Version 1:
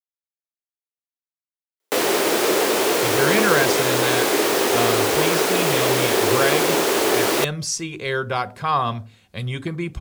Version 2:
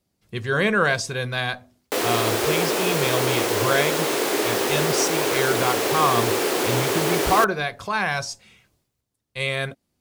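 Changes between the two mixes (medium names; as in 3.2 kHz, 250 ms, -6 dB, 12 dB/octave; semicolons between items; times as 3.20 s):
speech: entry -2.70 s; background -3.5 dB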